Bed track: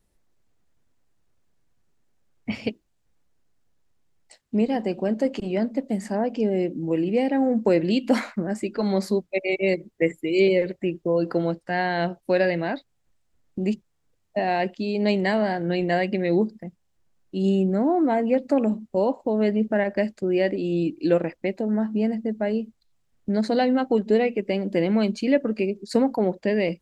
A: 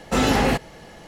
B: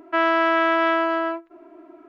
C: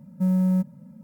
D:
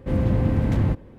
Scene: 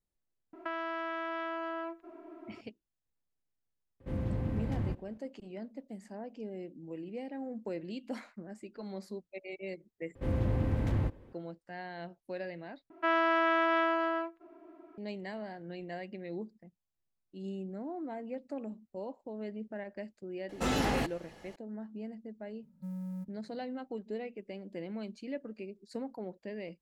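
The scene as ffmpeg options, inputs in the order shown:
ffmpeg -i bed.wav -i cue0.wav -i cue1.wav -i cue2.wav -i cue3.wav -filter_complex "[2:a]asplit=2[link_01][link_02];[4:a]asplit=2[link_03][link_04];[0:a]volume=-19dB[link_05];[link_01]acompressor=threshold=-29dB:ratio=6:attack=3.2:release=140:knee=1:detection=peak[link_06];[link_04]equalizer=frequency=180:width=1.9:gain=-6[link_07];[3:a]equalizer=frequency=440:width=1.4:gain=-4.5[link_08];[link_05]asplit=3[link_09][link_10][link_11];[link_09]atrim=end=10.154[link_12];[link_07]atrim=end=1.18,asetpts=PTS-STARTPTS,volume=-8dB[link_13];[link_10]atrim=start=11.326:end=12.904[link_14];[link_02]atrim=end=2.08,asetpts=PTS-STARTPTS,volume=-8.5dB[link_15];[link_11]atrim=start=14.976[link_16];[link_06]atrim=end=2.08,asetpts=PTS-STARTPTS,volume=-4dB,afade=type=in:duration=0.004:curve=hsin,afade=type=out:start_time=2.076:duration=0.004:curve=hsin,adelay=530[link_17];[link_03]atrim=end=1.18,asetpts=PTS-STARTPTS,volume=-13dB,afade=type=in:duration=0.004:curve=hsin,afade=type=out:start_time=1.176:duration=0.004:curve=hsin,adelay=4000[link_18];[1:a]atrim=end=1.07,asetpts=PTS-STARTPTS,volume=-11dB,afade=type=in:duration=0.004:curve=hsin,afade=type=out:start_time=1.066:duration=0.004:curve=hsin,adelay=20490[link_19];[link_08]atrim=end=1.03,asetpts=PTS-STARTPTS,volume=-18dB,afade=type=in:duration=0.004:curve=hsin,afade=type=out:start_time=1.026:duration=0.004:curve=hsin,adelay=22620[link_20];[link_12][link_13]acrossfade=duration=0.004:curve1=hsin:curve2=hsin[link_21];[link_21][link_14]acrossfade=duration=0.004:curve1=hsin:curve2=hsin[link_22];[link_22][link_15]acrossfade=duration=0.004:curve1=hsin:curve2=hsin[link_23];[link_23][link_16]acrossfade=duration=0.004:curve1=hsin:curve2=hsin[link_24];[link_24][link_17][link_18][link_19][link_20]amix=inputs=5:normalize=0" out.wav

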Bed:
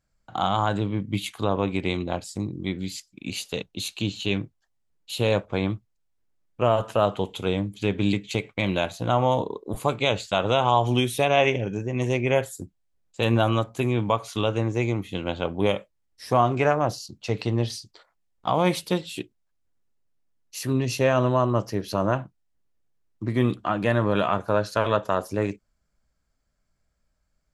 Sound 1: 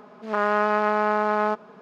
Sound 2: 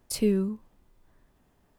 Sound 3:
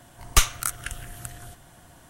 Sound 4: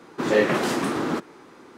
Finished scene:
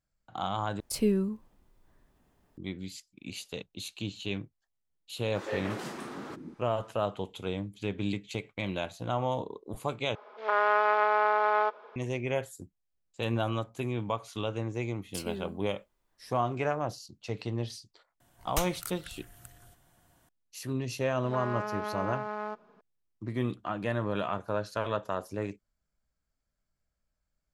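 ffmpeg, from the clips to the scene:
ffmpeg -i bed.wav -i cue0.wav -i cue1.wav -i cue2.wav -i cue3.wav -filter_complex "[2:a]asplit=2[link_01][link_02];[1:a]asplit=2[link_03][link_04];[0:a]volume=-9dB[link_05];[4:a]acrossover=split=340[link_06][link_07];[link_06]adelay=180[link_08];[link_08][link_07]amix=inputs=2:normalize=0[link_09];[link_03]highpass=frequency=380:width=0.5412,highpass=frequency=380:width=1.3066,equalizer=frequency=510:width_type=q:width=4:gain=8,equalizer=frequency=920:width_type=q:width=4:gain=6,equalizer=frequency=1400:width_type=q:width=4:gain=5,equalizer=frequency=2200:width_type=q:width=4:gain=6,equalizer=frequency=3400:width_type=q:width=4:gain=7,lowpass=frequency=5600:width=0.5412,lowpass=frequency=5600:width=1.3066[link_10];[link_02]lowshelf=frequency=440:gain=-11[link_11];[3:a]equalizer=frequency=14000:width=6:gain=11.5[link_12];[link_05]asplit=3[link_13][link_14][link_15];[link_13]atrim=end=0.804[link_16];[link_01]atrim=end=1.78,asetpts=PTS-STARTPTS,volume=-2dB[link_17];[link_14]atrim=start=2.576:end=10.154[link_18];[link_10]atrim=end=1.81,asetpts=PTS-STARTPTS,volume=-6.5dB[link_19];[link_15]atrim=start=11.956[link_20];[link_09]atrim=end=1.77,asetpts=PTS-STARTPTS,volume=-14dB,afade=type=in:duration=0.004:curve=hsin,afade=type=out:start_time=1.766:duration=0.004:curve=hsin,adelay=5160[link_21];[link_11]atrim=end=1.78,asetpts=PTS-STARTPTS,volume=-7dB,afade=type=in:duration=0.004:curve=hsin,afade=type=out:start_time=1.776:duration=0.004:curve=hsin,adelay=15040[link_22];[link_12]atrim=end=2.09,asetpts=PTS-STARTPTS,volume=-14dB,afade=type=in:duration=0.004:curve=hsin,afade=type=out:start_time=2.086:duration=0.004:curve=hsin,adelay=18200[link_23];[link_04]atrim=end=1.81,asetpts=PTS-STARTPTS,volume=-13.5dB,afade=type=in:duration=0.004:curve=hsin,afade=type=out:start_time=1.806:duration=0.004:curve=hsin,adelay=926100S[link_24];[link_16][link_17]acrossfade=duration=0.004:curve1=hsin:curve2=hsin[link_25];[link_25][link_18]acrossfade=duration=0.004:curve1=hsin:curve2=hsin[link_26];[link_26][link_19]acrossfade=duration=0.004:curve1=hsin:curve2=hsin[link_27];[link_27][link_20]acrossfade=duration=0.004:curve1=hsin:curve2=hsin[link_28];[link_28][link_21][link_22][link_23][link_24]amix=inputs=5:normalize=0" out.wav

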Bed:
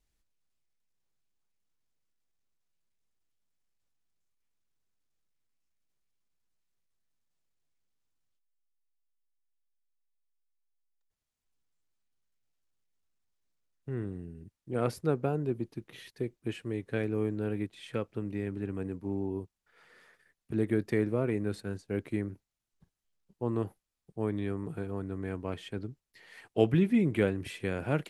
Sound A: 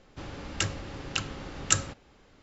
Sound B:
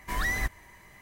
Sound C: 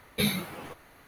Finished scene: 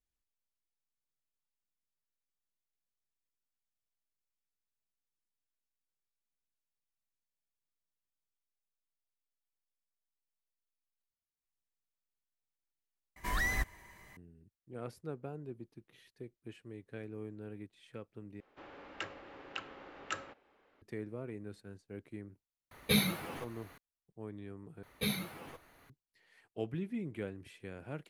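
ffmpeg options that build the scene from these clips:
ffmpeg -i bed.wav -i cue0.wav -i cue1.wav -i cue2.wav -filter_complex "[3:a]asplit=2[link_01][link_02];[0:a]volume=-13.5dB[link_03];[1:a]acrossover=split=300 3000:gain=0.1 1 0.0891[link_04][link_05][link_06];[link_04][link_05][link_06]amix=inputs=3:normalize=0[link_07];[link_03]asplit=4[link_08][link_09][link_10][link_11];[link_08]atrim=end=13.164[link_12];[2:a]atrim=end=1.01,asetpts=PTS-STARTPTS,volume=-4dB[link_13];[link_09]atrim=start=14.166:end=18.404[link_14];[link_07]atrim=end=2.42,asetpts=PTS-STARTPTS,volume=-7dB[link_15];[link_10]atrim=start=20.816:end=24.834[link_16];[link_02]atrim=end=1.07,asetpts=PTS-STARTPTS,volume=-7.5dB[link_17];[link_11]atrim=start=25.896[link_18];[link_01]atrim=end=1.07,asetpts=PTS-STARTPTS,volume=-1.5dB,afade=type=in:duration=0.004:curve=hsin,afade=type=out:start_time=1.066:duration=0.004:curve=hsin,adelay=22710[link_19];[link_12][link_13]acrossfade=duration=0.004:curve1=hsin:curve2=hsin[link_20];[link_20][link_14]acrossfade=duration=0.004:curve1=hsin:curve2=hsin[link_21];[link_21][link_15]acrossfade=duration=0.004:curve1=hsin:curve2=hsin[link_22];[link_22][link_16]acrossfade=duration=0.004:curve1=hsin:curve2=hsin[link_23];[link_23][link_17]acrossfade=duration=0.004:curve1=hsin:curve2=hsin[link_24];[link_24][link_18]acrossfade=duration=0.004:curve1=hsin:curve2=hsin[link_25];[link_25][link_19]amix=inputs=2:normalize=0" out.wav

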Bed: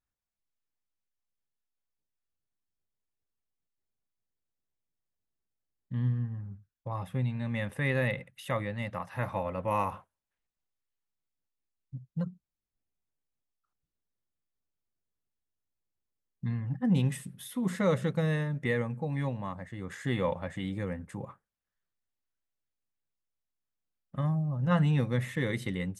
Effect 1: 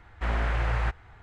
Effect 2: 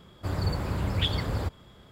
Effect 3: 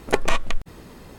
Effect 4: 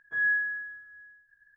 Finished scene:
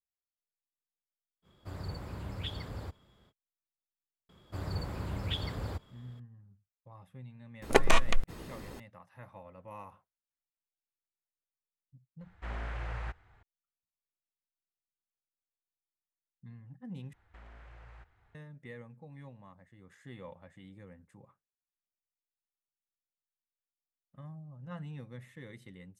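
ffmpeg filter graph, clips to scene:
ffmpeg -i bed.wav -i cue0.wav -i cue1.wav -i cue2.wav -filter_complex "[2:a]asplit=2[link_01][link_02];[1:a]asplit=2[link_03][link_04];[0:a]volume=-17.5dB[link_05];[link_04]acompressor=threshold=-36dB:ratio=5:attack=12:release=48:knee=1:detection=peak[link_06];[link_05]asplit=2[link_07][link_08];[link_07]atrim=end=17.134[link_09];[link_06]atrim=end=1.22,asetpts=PTS-STARTPTS,volume=-17dB[link_10];[link_08]atrim=start=18.346[link_11];[link_01]atrim=end=1.91,asetpts=PTS-STARTPTS,volume=-12dB,afade=type=in:duration=0.05,afade=type=out:start_time=1.86:duration=0.05,adelay=1420[link_12];[link_02]atrim=end=1.91,asetpts=PTS-STARTPTS,volume=-8dB,afade=type=in:duration=0.004:curve=hsin,afade=type=out:start_time=1.906:duration=0.004:curve=hsin,adelay=189189S[link_13];[3:a]atrim=end=1.18,asetpts=PTS-STARTPTS,volume=-2.5dB,afade=type=in:duration=0.004:curve=hsin,afade=type=out:start_time=1.176:duration=0.004:curve=hsin,adelay=336042S[link_14];[link_03]atrim=end=1.22,asetpts=PTS-STARTPTS,volume=-11.5dB,afade=type=in:duration=0.004:curve=hsin,afade=type=out:start_time=1.216:duration=0.004:curve=hsin,adelay=12210[link_15];[link_09][link_10]acrossfade=duration=0.004:curve1=hsin:curve2=hsin[link_16];[link_16][link_11]acrossfade=duration=0.004:curve1=hsin:curve2=hsin[link_17];[link_17][link_12][link_13][link_14][link_15]amix=inputs=5:normalize=0" out.wav

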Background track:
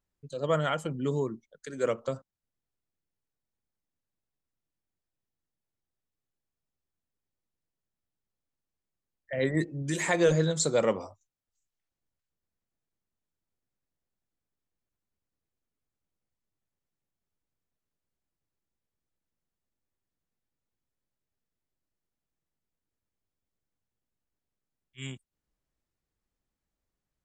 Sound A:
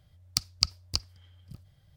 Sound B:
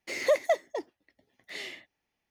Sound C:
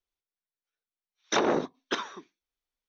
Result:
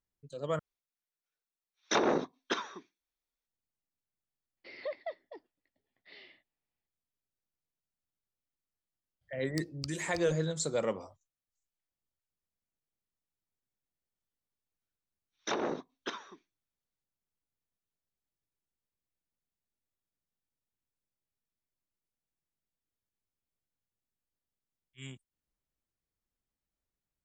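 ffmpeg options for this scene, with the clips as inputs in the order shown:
ffmpeg -i bed.wav -i cue0.wav -i cue1.wav -i cue2.wav -filter_complex "[3:a]asplit=2[link_01][link_02];[0:a]volume=-6.5dB[link_03];[link_01]bandreject=frequency=3000:width=22[link_04];[2:a]aresample=11025,aresample=44100[link_05];[link_03]asplit=2[link_06][link_07];[link_06]atrim=end=0.594[link_08];[link_04]atrim=end=2.88,asetpts=PTS-STARTPTS,volume=-3dB[link_09];[link_07]atrim=start=3.466[link_10];[link_05]atrim=end=2.3,asetpts=PTS-STARTPTS,volume=-14.5dB,afade=type=in:duration=0.004:curve=hsin,afade=type=out:start_time=2.296:duration=0.004:curve=hsin,adelay=201537S[link_11];[1:a]atrim=end=1.96,asetpts=PTS-STARTPTS,volume=-17.5dB,afade=type=in:duration=0.004:curve=hsin,afade=type=out:start_time=1.956:duration=0.004:curve=hsin,adelay=9210[link_12];[link_02]atrim=end=2.88,asetpts=PTS-STARTPTS,volume=-8.5dB,afade=type=in:duration=0.004:curve=hsin,afade=type=out:start_time=2.876:duration=0.004:curve=hsin,adelay=14150[link_13];[link_08][link_09]acrossfade=duration=0.004:curve1=hsin:curve2=hsin[link_14];[link_14][link_10]acrossfade=duration=0.004:curve1=hsin:curve2=hsin[link_15];[link_15][link_11][link_12][link_13]amix=inputs=4:normalize=0" out.wav

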